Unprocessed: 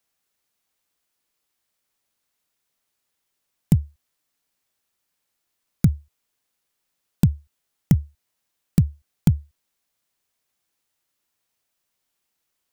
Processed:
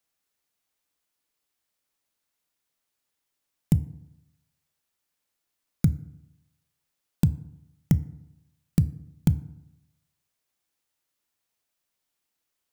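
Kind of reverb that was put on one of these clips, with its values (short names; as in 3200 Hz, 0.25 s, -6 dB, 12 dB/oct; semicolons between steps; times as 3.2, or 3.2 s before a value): FDN reverb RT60 0.86 s, low-frequency decay 1.05×, high-frequency decay 0.5×, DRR 14.5 dB; gain -4 dB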